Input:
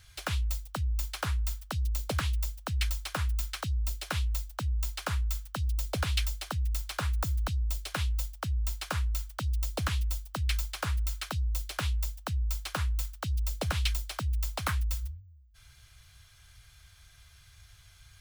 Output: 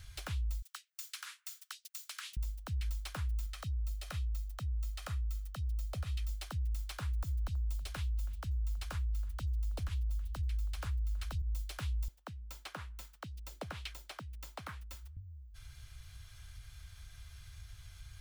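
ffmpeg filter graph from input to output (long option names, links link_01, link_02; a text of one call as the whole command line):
ffmpeg -i in.wav -filter_complex "[0:a]asettb=1/sr,asplit=3[link_01][link_02][link_03];[link_01]atrim=end=0.624[link_04];[link_02]atrim=start=0.62:end=2.37,asetpts=PTS-STARTPTS,afade=type=in:duration=0.004:curve=qsin,afade=type=out:start_time=1.746:duration=0.004:curve=qsin,highpass=frequency=1300:width=0.5412,highpass=frequency=1300:width=1.3066,equalizer=frequency=7300:width_type=o:width=1.4:gain=3.5[link_05];[link_03]atrim=start=2.366[link_06];[link_04][link_05]acrossfade=duration=0.004:curve1=hsin:curve2=qsin[link_07];[link_07][link_06]acrossfade=duration=0.004:curve1=qsin:curve2=hsin,asettb=1/sr,asplit=3[link_08][link_09][link_10];[link_08]atrim=end=3.464[link_11];[link_09]atrim=start=3.46:end=6.29,asetpts=PTS-STARTPTS,afade=type=in:duration=0.004:curve=qsin,afade=type=out:start_time=2.826:duration=0.004:curve=qsin,aecho=1:1:1.6:0.41,atrim=end_sample=124803,acompressor=threshold=-39dB:ratio=2:attack=3.2:release=140:knee=1:detection=peak[link_12];[link_10]atrim=start=6.286[link_13];[link_11][link_12]acrossfade=duration=0.004:curve1=hsin:curve2=qsin[link_14];[link_14][link_13]acrossfade=duration=0.004:curve1=qsin:curve2=hsin,asettb=1/sr,asplit=3[link_15][link_16][link_17];[link_15]atrim=end=7.164[link_18];[link_16]atrim=start=7.16:end=11.42,asetpts=PTS-STARTPTS,afade=type=in:duration=0.004:curve=qsin,afade=type=out:start_time=4.256:duration=0.004:curve=qsin,asubboost=boost=7.5:cutoff=52,aecho=1:1:324:0.0891,atrim=end_sample=187866[link_19];[link_17]atrim=start=11.416[link_20];[link_18][link_19]acrossfade=duration=0.004:curve1=hsin:curve2=qsin[link_21];[link_21][link_20]acrossfade=duration=0.004:curve1=qsin:curve2=hsin,asettb=1/sr,asplit=3[link_22][link_23][link_24];[link_22]atrim=end=12.084[link_25];[link_23]atrim=start=12.08:end=15.17,asetpts=PTS-STARTPTS,afade=type=in:duration=0.004:curve=qsin,afade=type=out:start_time=3.086:duration=0.004:curve=qsin,highpass=200,highshelf=frequency=3200:gain=-11[link_26];[link_24]atrim=start=15.166[link_27];[link_25][link_26]acrossfade=duration=0.004:curve1=hsin:curve2=qsin[link_28];[link_28][link_27]acrossfade=duration=0.004:curve1=qsin:curve2=hsin,lowshelf=frequency=120:gain=9.5,acompressor=threshold=-51dB:ratio=1.5,alimiter=level_in=7dB:limit=-24dB:level=0:latency=1:release=97,volume=-7dB,volume=1dB" out.wav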